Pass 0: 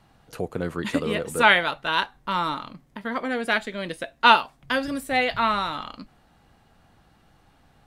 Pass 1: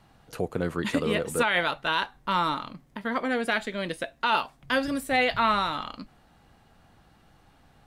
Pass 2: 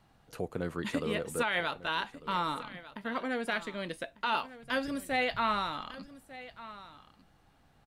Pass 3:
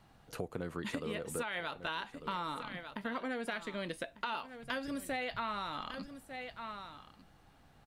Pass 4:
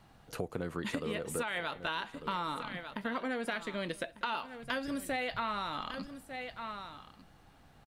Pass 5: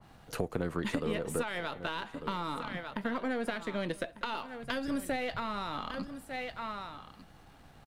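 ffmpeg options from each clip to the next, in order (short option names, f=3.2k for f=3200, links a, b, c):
-af "alimiter=limit=-13.5dB:level=0:latency=1:release=23"
-af "aecho=1:1:1198:0.15,volume=-6.5dB"
-af "acompressor=threshold=-37dB:ratio=6,volume=2dB"
-af "aecho=1:1:192:0.0708,volume=2.5dB"
-filter_complex "[0:a]aeval=exprs='if(lt(val(0),0),0.708*val(0),val(0))':c=same,acrossover=split=480|3000[a][b][c];[b]acompressor=threshold=-39dB:ratio=6[d];[a][d][c]amix=inputs=3:normalize=0,adynamicequalizer=threshold=0.00178:dfrequency=1900:dqfactor=0.7:tfrequency=1900:tqfactor=0.7:attack=5:release=100:ratio=0.375:range=2.5:mode=cutabove:tftype=highshelf,volume=5dB"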